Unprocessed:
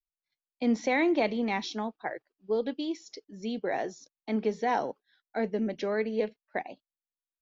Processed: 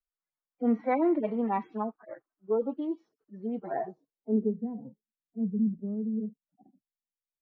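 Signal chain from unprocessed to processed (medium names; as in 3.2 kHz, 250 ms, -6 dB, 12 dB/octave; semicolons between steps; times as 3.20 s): harmonic-percussive separation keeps harmonic; low-pass sweep 1.3 kHz -> 190 Hz, 3.69–4.71 s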